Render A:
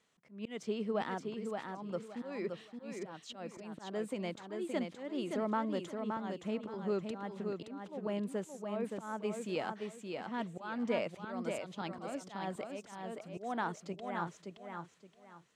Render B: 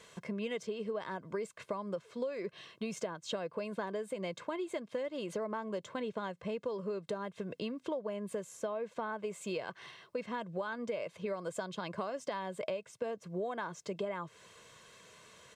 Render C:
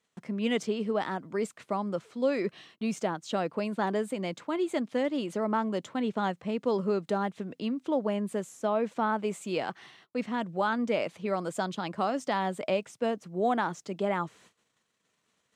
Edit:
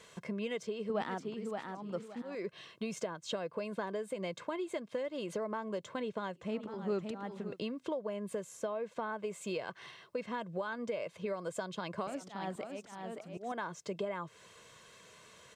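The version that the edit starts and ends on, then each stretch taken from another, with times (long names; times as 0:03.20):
B
0:00.90–0:02.35: punch in from A
0:06.46–0:07.48: punch in from A, crossfade 0.24 s
0:12.07–0:13.52: punch in from A
not used: C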